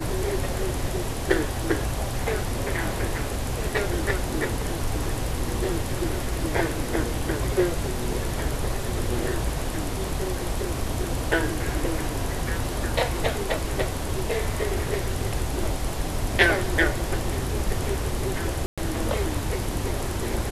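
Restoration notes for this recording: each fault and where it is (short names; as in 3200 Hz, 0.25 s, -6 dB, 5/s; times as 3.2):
18.66–18.78 gap 0.116 s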